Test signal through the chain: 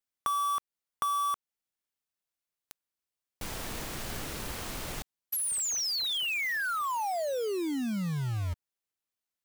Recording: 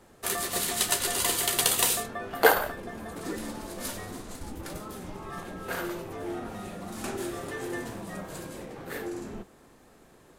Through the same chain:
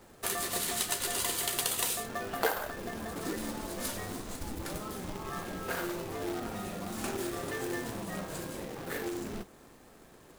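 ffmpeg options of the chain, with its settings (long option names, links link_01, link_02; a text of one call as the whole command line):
ffmpeg -i in.wav -af "acrusher=bits=2:mode=log:mix=0:aa=0.000001,acompressor=threshold=-31dB:ratio=2.5" out.wav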